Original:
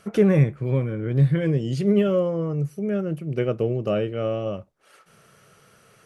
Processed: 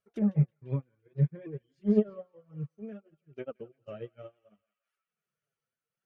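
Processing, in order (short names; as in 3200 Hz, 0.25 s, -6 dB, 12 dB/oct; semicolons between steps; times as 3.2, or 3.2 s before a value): repeated pitch sweeps +1 st, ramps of 0.292 s; reverb removal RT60 0.98 s; treble ducked by the level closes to 890 Hz, closed at -16.5 dBFS; flange 0.62 Hz, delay 1.6 ms, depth 6.9 ms, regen -6%; narrowing echo 0.171 s, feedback 76%, band-pass 2100 Hz, level -10 dB; upward expander 2.5:1, over -39 dBFS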